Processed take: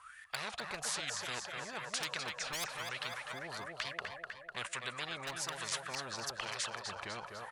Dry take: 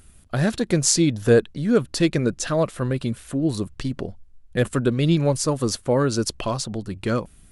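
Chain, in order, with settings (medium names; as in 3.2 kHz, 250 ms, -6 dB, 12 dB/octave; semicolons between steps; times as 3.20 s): wow and flutter 110 cents; wah-wah 1.1 Hz 570–1800 Hz, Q 21; in parallel at -9 dB: overload inside the chain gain 31.5 dB; on the sum: amplifier tone stack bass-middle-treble 10-0-10; on a send: feedback delay 250 ms, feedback 54%, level -12 dB; on the sum: spectrum-flattening compressor 10:1; trim +12 dB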